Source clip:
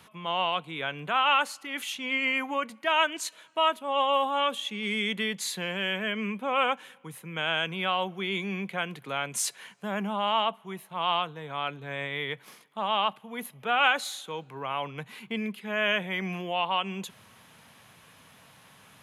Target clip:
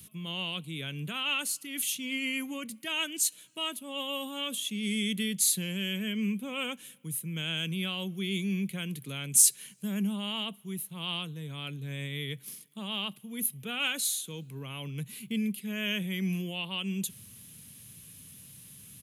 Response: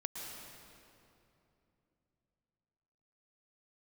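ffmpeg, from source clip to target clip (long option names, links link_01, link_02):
-af "firequalizer=gain_entry='entry(120,0);entry(750,-27);entry(2700,-10);entry(10000,7)':delay=0.05:min_phase=1,volume=7dB"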